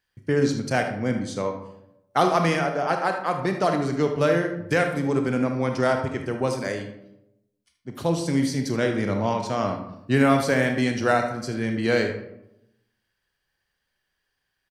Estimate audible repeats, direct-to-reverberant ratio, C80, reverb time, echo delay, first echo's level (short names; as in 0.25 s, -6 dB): 1, 4.5 dB, 10.0 dB, 0.85 s, 76 ms, -11.5 dB